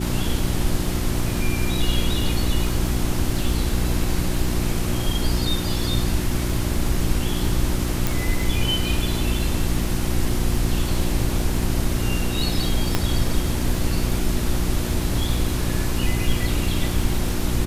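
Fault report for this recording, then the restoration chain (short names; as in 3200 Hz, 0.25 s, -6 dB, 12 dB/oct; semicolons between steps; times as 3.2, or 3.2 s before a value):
crackle 30/s -28 dBFS
hum 60 Hz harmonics 6 -26 dBFS
8.07 pop
12.95 pop -4 dBFS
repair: de-click; de-hum 60 Hz, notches 6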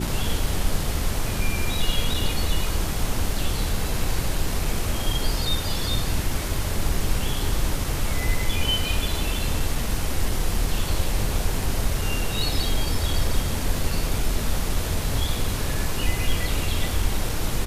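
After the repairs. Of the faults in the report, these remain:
none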